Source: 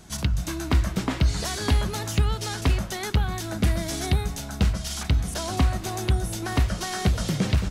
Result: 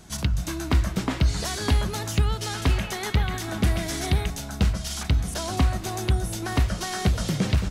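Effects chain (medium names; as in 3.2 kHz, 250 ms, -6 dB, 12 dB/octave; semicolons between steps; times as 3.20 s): 2.27–4.30 s: repeats whose band climbs or falls 137 ms, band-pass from 2.5 kHz, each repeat -0.7 oct, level -2 dB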